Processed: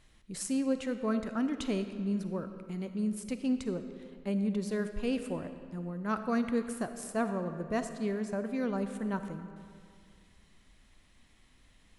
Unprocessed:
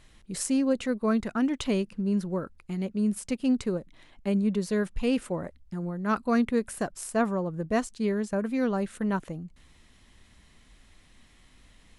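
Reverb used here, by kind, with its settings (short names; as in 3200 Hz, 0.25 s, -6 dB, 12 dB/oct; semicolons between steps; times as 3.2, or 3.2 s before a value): digital reverb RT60 2.2 s, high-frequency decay 0.7×, pre-delay 10 ms, DRR 8.5 dB; gain -6 dB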